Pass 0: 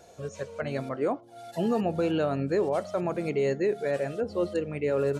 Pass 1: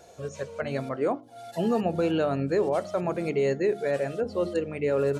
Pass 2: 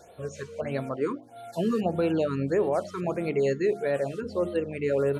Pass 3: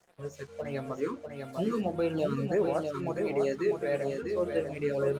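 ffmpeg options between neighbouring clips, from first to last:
ffmpeg -i in.wav -af "bandreject=frequency=50:width_type=h:width=6,bandreject=frequency=100:width_type=h:width=6,bandreject=frequency=150:width_type=h:width=6,bandreject=frequency=200:width_type=h:width=6,bandreject=frequency=250:width_type=h:width=6,bandreject=frequency=300:width_type=h:width=6,bandreject=frequency=350:width_type=h:width=6,volume=1.5dB" out.wav
ffmpeg -i in.wav -af "afftfilt=real='re*(1-between(b*sr/1024,650*pow(6300/650,0.5+0.5*sin(2*PI*1.6*pts/sr))/1.41,650*pow(6300/650,0.5+0.5*sin(2*PI*1.6*pts/sr))*1.41))':imag='im*(1-between(b*sr/1024,650*pow(6300/650,0.5+0.5*sin(2*PI*1.6*pts/sr))/1.41,650*pow(6300/650,0.5+0.5*sin(2*PI*1.6*pts/sr))*1.41))':win_size=1024:overlap=0.75" out.wav
ffmpeg -i in.wav -af "aeval=exprs='sgn(val(0))*max(abs(val(0))-0.00316,0)':channel_layout=same,flanger=delay=5:depth=7.9:regen=-39:speed=0.39:shape=triangular,aecho=1:1:647:0.531" out.wav

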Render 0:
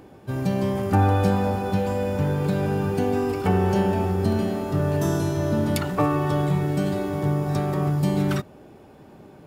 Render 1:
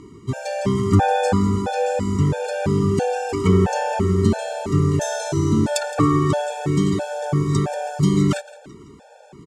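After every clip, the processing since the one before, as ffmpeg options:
ffmpeg -i in.wav -af "lowpass=frequency=7500:width_type=q:width=2.8,aecho=1:1:167|334|501|668:0.112|0.0505|0.0227|0.0102,afftfilt=real='re*gt(sin(2*PI*1.5*pts/sr)*(1-2*mod(floor(b*sr/1024/460),2)),0)':imag='im*gt(sin(2*PI*1.5*pts/sr)*(1-2*mod(floor(b*sr/1024/460),2)),0)':win_size=1024:overlap=0.75,volume=6dB" out.wav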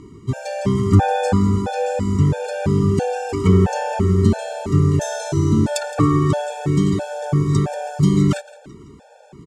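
ffmpeg -i in.wav -af "lowshelf=frequency=190:gain=6,volume=-1dB" out.wav

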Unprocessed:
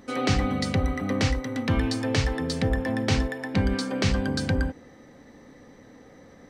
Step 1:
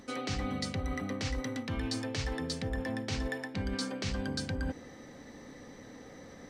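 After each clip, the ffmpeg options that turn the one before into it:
ffmpeg -i in.wav -af "equalizer=frequency=5800:width=0.54:gain=5,areverse,acompressor=threshold=-32dB:ratio=6,areverse" out.wav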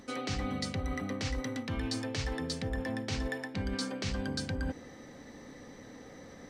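ffmpeg -i in.wav -af anull out.wav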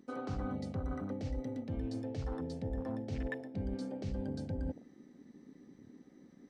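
ffmpeg -i in.wav -af "afwtdn=0.0126,volume=-2.5dB" out.wav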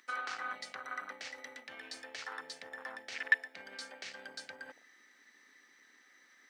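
ffmpeg -i in.wav -af "aeval=exprs='0.0473*(cos(1*acos(clip(val(0)/0.0473,-1,1)))-cos(1*PI/2))+0.00422*(cos(3*acos(clip(val(0)/0.0473,-1,1)))-cos(3*PI/2))':channel_layout=same,highpass=frequency=1700:width_type=q:width=2,volume=12dB" out.wav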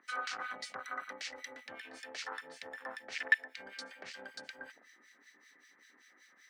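ffmpeg -i in.wav -filter_complex "[0:a]acrossover=split=1600[link_01][link_02];[link_01]aeval=exprs='val(0)*(1-1/2+1/2*cos(2*PI*5.2*n/s))':channel_layout=same[link_03];[link_02]aeval=exprs='val(0)*(1-1/2-1/2*cos(2*PI*5.2*n/s))':channel_layout=same[link_04];[link_03][link_04]amix=inputs=2:normalize=0,volume=5.5dB" out.wav

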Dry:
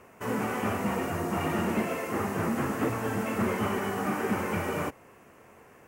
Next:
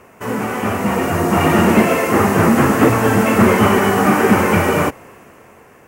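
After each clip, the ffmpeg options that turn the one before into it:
ffmpeg -i in.wav -af "dynaudnorm=framelen=200:gausssize=11:maxgain=8dB,volume=8.5dB" out.wav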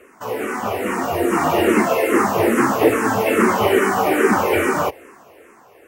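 ffmpeg -i in.wav -filter_complex "[0:a]lowshelf=frequency=240:width_type=q:width=1.5:gain=-8,asplit=2[link_01][link_02];[link_02]afreqshift=-2.4[link_03];[link_01][link_03]amix=inputs=2:normalize=1" out.wav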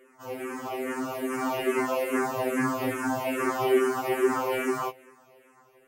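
ffmpeg -i in.wav -af "afftfilt=real='re*2.45*eq(mod(b,6),0)':imag='im*2.45*eq(mod(b,6),0)':win_size=2048:overlap=0.75,volume=-8dB" out.wav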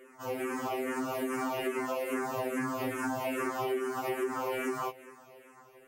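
ffmpeg -i in.wav -af "acompressor=threshold=-33dB:ratio=6,volume=2.5dB" out.wav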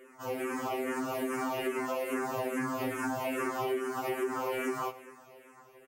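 ffmpeg -i in.wav -af "aecho=1:1:102:0.126" out.wav

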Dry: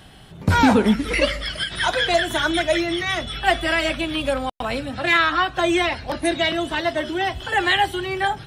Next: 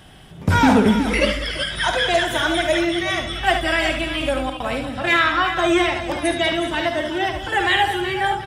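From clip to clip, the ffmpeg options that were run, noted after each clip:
ffmpeg -i in.wav -filter_complex "[0:a]bandreject=frequency=4200:width=9.4,asoftclip=type=hard:threshold=-8dB,asplit=2[link_01][link_02];[link_02]aecho=0:1:53|73|191|374:0.282|0.398|0.188|0.282[link_03];[link_01][link_03]amix=inputs=2:normalize=0" out.wav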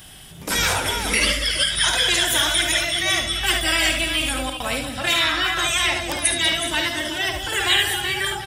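ffmpeg -i in.wav -af "afftfilt=real='re*lt(hypot(re,im),0.631)':imag='im*lt(hypot(re,im),0.631)':win_size=1024:overlap=0.75,crystalizer=i=6:c=0,lowshelf=frequency=110:gain=5,volume=-4.5dB" out.wav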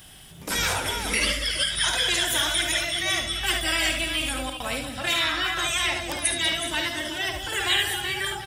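ffmpeg -i in.wav -af "acrusher=bits=9:mix=0:aa=0.000001,volume=-4.5dB" out.wav

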